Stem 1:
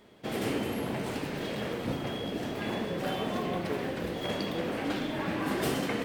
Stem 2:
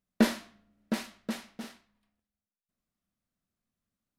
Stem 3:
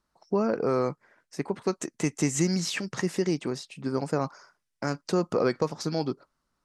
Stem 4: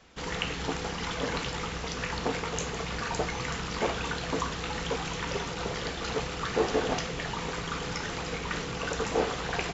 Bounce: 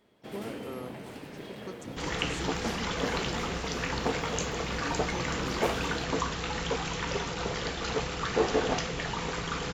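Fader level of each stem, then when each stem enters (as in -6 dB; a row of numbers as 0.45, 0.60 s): -9.0, -13.5, -15.5, +0.5 dB; 0.00, 2.45, 0.00, 1.80 s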